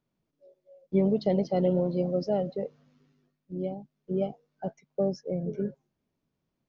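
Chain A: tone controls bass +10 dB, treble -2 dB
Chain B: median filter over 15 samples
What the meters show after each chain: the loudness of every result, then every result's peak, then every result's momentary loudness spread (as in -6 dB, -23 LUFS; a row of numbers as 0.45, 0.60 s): -25.0, -30.0 LUFS; -8.5, -14.0 dBFS; 14, 14 LU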